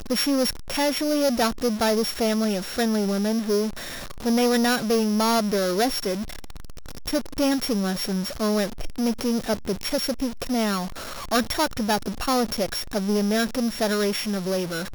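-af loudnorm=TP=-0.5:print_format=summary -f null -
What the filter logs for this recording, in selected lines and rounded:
Input Integrated:    -24.2 LUFS
Input True Peak:     -13.3 dBTP
Input LRA:             2.7 LU
Input Threshold:     -34.4 LUFS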